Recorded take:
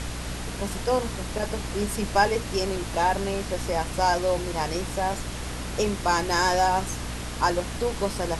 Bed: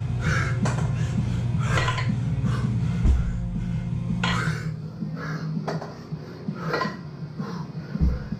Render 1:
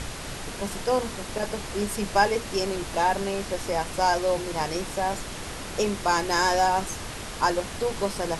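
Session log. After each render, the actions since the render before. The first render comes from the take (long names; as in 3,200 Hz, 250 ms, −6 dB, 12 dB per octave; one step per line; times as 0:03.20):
hum removal 60 Hz, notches 5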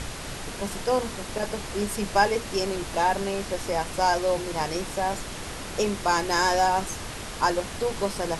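no processing that can be heard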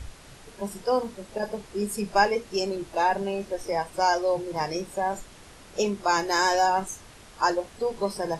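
noise reduction from a noise print 13 dB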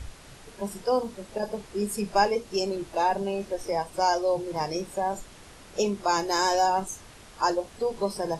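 dynamic equaliser 1,800 Hz, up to −6 dB, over −41 dBFS, Q 1.4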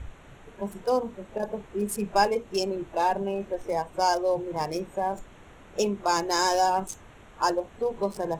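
adaptive Wiener filter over 9 samples
high-shelf EQ 6,100 Hz +5.5 dB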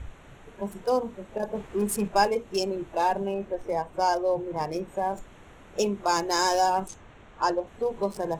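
0:01.55–0:02.08: leveller curve on the samples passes 1
0:03.34–0:04.88: high-shelf EQ 3,500 Hz −7 dB
0:06.88–0:07.67: high-frequency loss of the air 71 metres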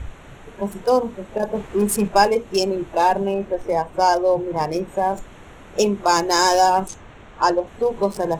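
level +7.5 dB
brickwall limiter −3 dBFS, peak gain reduction 1 dB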